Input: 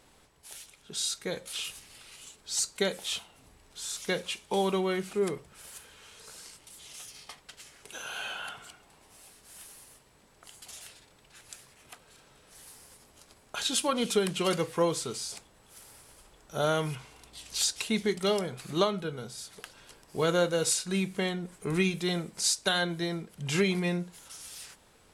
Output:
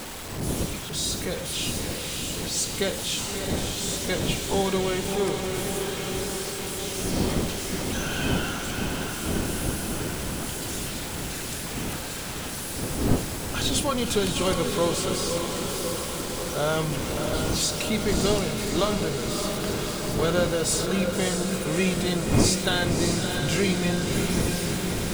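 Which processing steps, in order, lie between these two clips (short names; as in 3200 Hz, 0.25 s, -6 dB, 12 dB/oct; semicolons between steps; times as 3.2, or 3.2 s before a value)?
zero-crossing step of -31.5 dBFS; wind noise 300 Hz -33 dBFS; diffused feedback echo 0.614 s, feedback 71%, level -5 dB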